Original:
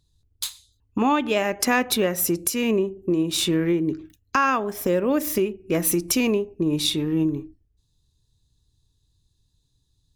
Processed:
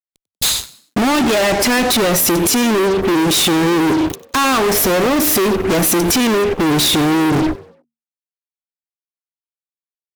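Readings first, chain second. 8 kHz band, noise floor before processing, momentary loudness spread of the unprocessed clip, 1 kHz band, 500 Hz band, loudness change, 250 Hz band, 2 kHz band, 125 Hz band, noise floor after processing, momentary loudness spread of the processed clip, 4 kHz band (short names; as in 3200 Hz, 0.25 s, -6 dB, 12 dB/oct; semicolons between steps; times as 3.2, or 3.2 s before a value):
+10.5 dB, -69 dBFS, 7 LU, +8.5 dB, +8.0 dB, +8.5 dB, +8.0 dB, +9.0 dB, +8.0 dB, under -85 dBFS, 5 LU, +11.0 dB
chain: compressor, threshold -27 dBFS, peak gain reduction 11.5 dB; fuzz box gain 50 dB, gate -54 dBFS; frequency-shifting echo 95 ms, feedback 38%, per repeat +77 Hz, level -19.5 dB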